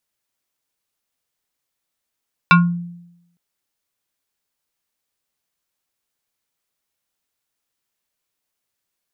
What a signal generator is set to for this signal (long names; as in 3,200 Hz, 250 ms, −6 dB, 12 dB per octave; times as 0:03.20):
two-operator FM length 0.86 s, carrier 173 Hz, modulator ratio 7.23, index 2.2, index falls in 0.29 s exponential, decay 0.86 s, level −5 dB